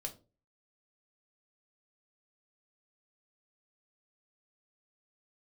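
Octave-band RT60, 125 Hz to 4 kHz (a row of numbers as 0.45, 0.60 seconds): 0.45, 0.40, 0.40, 0.30, 0.20, 0.20 seconds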